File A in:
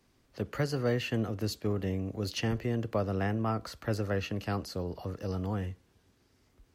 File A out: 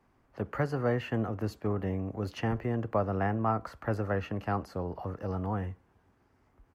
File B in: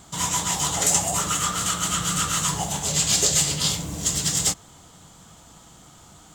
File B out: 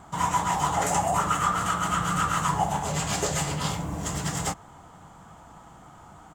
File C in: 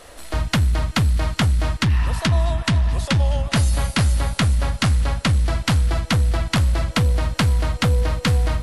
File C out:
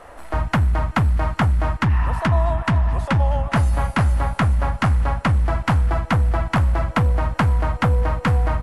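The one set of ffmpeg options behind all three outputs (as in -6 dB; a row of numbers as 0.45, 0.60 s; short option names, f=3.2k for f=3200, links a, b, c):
-af "firequalizer=gain_entry='entry(490,0);entry(820,7);entry(3800,-13);entry(9100,-11)':delay=0.05:min_phase=1"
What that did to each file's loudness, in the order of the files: +0.5, -5.0, 0.0 LU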